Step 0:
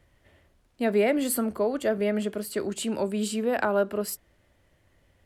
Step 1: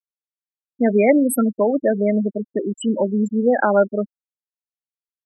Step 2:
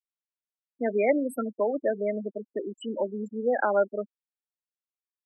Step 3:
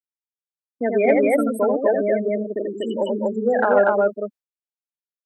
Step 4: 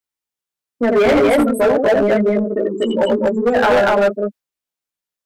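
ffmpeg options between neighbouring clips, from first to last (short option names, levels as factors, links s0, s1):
-af "afftfilt=real='re*gte(hypot(re,im),0.1)':imag='im*gte(hypot(re,im),0.1)':win_size=1024:overlap=0.75,aecho=1:1:3.7:0.32,volume=2.66"
-filter_complex "[0:a]acrossover=split=290 4800:gain=0.2 1 0.158[s0][s1][s2];[s0][s1][s2]amix=inputs=3:normalize=0,volume=0.447"
-af "agate=range=0.0224:threshold=0.00794:ratio=3:detection=peak,aecho=1:1:84.55|242:0.631|0.891,acontrast=28"
-filter_complex "[0:a]asplit=2[s0][s1];[s1]asoftclip=type=tanh:threshold=0.0891,volume=0.422[s2];[s0][s2]amix=inputs=2:normalize=0,flanger=delay=15:depth=2.1:speed=0.46,volume=8.41,asoftclip=hard,volume=0.119,volume=2.66"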